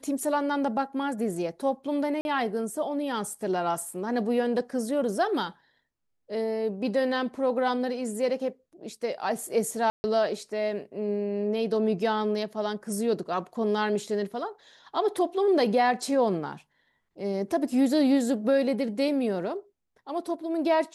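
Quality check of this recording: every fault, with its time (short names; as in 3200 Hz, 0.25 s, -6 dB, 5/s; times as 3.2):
2.21–2.25 gap 41 ms
9.9–10.04 gap 0.14 s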